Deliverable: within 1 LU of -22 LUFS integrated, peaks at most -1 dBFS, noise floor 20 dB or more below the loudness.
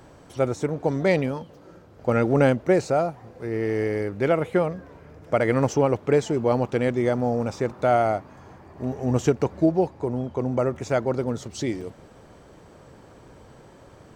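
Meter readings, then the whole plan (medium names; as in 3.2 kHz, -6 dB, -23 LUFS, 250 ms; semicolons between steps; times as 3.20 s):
dropouts 1; longest dropout 5.0 ms; loudness -24.0 LUFS; peak level -8.0 dBFS; loudness target -22.0 LUFS
-> interpolate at 11.81 s, 5 ms; trim +2 dB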